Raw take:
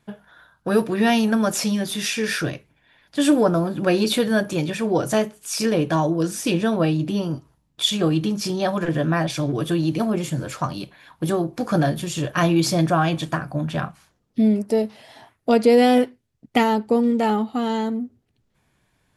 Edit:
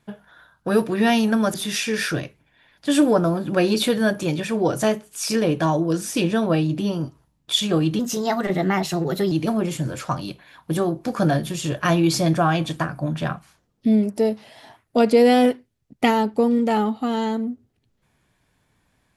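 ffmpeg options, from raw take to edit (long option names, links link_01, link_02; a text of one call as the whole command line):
ffmpeg -i in.wav -filter_complex "[0:a]asplit=4[link_01][link_02][link_03][link_04];[link_01]atrim=end=1.542[link_05];[link_02]atrim=start=1.838:end=8.294[link_06];[link_03]atrim=start=8.29:end=9.84,asetpts=PTS-STARTPTS,asetrate=51597,aresample=44100,atrim=end_sample=58423,asetpts=PTS-STARTPTS[link_07];[link_04]atrim=start=9.836[link_08];[link_05][link_06]acrossfade=duration=0.004:curve1=hsin:curve2=hsin[link_09];[link_09][link_07]acrossfade=duration=0.004:curve1=hsin:curve2=hsin[link_10];[link_10][link_08]acrossfade=duration=0.004:curve1=hsin:curve2=hsin" out.wav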